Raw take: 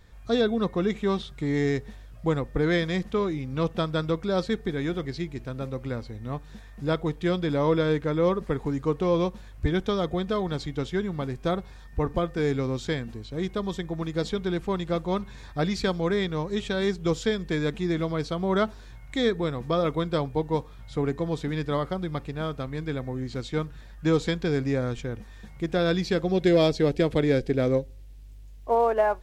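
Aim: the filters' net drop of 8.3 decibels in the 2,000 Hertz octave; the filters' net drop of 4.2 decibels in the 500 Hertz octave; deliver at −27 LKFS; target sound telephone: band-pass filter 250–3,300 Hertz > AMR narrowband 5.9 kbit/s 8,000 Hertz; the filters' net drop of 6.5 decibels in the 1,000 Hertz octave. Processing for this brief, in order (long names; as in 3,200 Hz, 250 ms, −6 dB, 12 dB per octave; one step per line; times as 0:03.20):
band-pass filter 250–3,300 Hz
parametric band 500 Hz −3 dB
parametric band 1,000 Hz −5.5 dB
parametric band 2,000 Hz −8 dB
level +6 dB
AMR narrowband 5.9 kbit/s 8,000 Hz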